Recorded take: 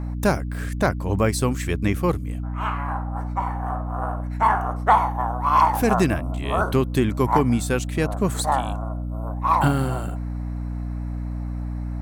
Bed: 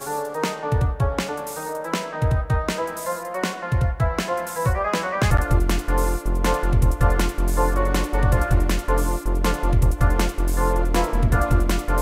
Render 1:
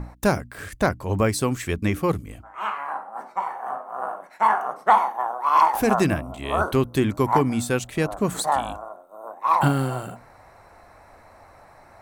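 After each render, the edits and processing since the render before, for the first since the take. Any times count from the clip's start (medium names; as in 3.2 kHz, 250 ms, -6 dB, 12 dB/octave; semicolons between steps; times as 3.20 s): hum notches 60/120/180/240/300 Hz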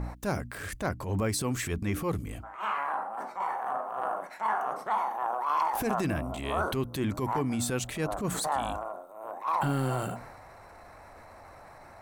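compression, threshold -24 dBFS, peak gain reduction 12.5 dB; transient shaper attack -10 dB, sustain +4 dB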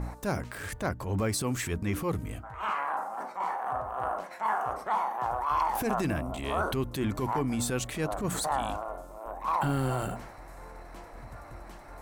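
add bed -28 dB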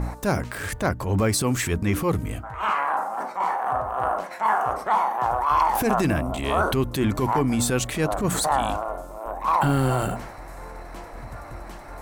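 trim +7.5 dB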